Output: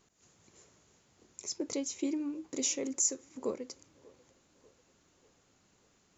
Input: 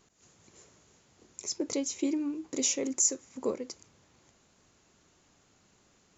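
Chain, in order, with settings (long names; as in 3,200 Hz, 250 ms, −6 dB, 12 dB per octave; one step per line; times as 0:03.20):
delay with a band-pass on its return 591 ms, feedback 49%, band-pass 620 Hz, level −23 dB
level −3.5 dB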